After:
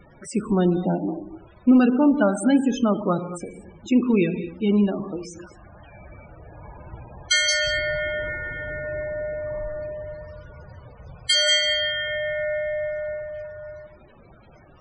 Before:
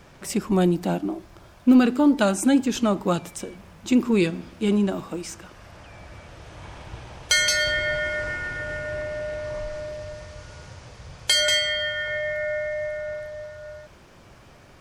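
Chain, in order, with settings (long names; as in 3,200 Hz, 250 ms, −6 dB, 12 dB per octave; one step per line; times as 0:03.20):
surface crackle 420 per second −33 dBFS
reverb whose tail is shaped and stops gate 270 ms flat, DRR 8 dB
spectral peaks only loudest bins 32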